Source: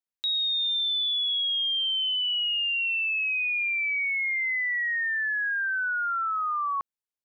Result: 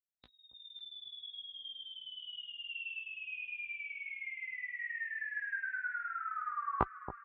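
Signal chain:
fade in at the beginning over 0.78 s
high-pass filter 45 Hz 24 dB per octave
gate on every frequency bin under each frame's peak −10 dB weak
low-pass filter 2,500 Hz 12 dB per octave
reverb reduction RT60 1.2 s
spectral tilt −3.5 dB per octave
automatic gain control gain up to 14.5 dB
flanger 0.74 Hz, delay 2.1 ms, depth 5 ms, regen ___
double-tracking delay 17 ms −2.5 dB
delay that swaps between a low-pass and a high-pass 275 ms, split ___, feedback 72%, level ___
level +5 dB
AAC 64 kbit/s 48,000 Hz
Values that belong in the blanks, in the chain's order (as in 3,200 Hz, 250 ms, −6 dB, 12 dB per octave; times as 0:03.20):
+67%, 1,000 Hz, −11 dB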